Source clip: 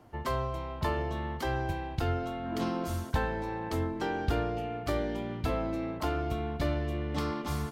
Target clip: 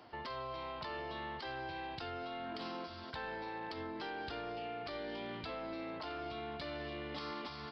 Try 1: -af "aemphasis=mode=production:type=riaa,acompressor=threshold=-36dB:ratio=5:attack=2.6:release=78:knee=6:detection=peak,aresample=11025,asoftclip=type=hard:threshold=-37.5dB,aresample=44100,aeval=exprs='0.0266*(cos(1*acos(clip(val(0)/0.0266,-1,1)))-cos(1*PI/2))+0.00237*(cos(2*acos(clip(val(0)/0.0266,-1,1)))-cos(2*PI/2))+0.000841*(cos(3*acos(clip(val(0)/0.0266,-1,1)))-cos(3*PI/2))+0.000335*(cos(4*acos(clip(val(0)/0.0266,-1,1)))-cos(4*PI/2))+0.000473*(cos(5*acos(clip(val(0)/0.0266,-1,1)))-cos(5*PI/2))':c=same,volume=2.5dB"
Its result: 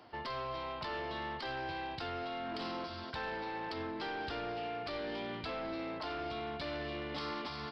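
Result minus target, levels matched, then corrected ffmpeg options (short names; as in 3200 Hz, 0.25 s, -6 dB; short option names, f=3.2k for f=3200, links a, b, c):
compressor: peak gain reduction -5 dB
-af "aemphasis=mode=production:type=riaa,acompressor=threshold=-42dB:ratio=5:attack=2.6:release=78:knee=6:detection=peak,aresample=11025,asoftclip=type=hard:threshold=-37.5dB,aresample=44100,aeval=exprs='0.0266*(cos(1*acos(clip(val(0)/0.0266,-1,1)))-cos(1*PI/2))+0.00237*(cos(2*acos(clip(val(0)/0.0266,-1,1)))-cos(2*PI/2))+0.000841*(cos(3*acos(clip(val(0)/0.0266,-1,1)))-cos(3*PI/2))+0.000335*(cos(4*acos(clip(val(0)/0.0266,-1,1)))-cos(4*PI/2))+0.000473*(cos(5*acos(clip(val(0)/0.0266,-1,1)))-cos(5*PI/2))':c=same,volume=2.5dB"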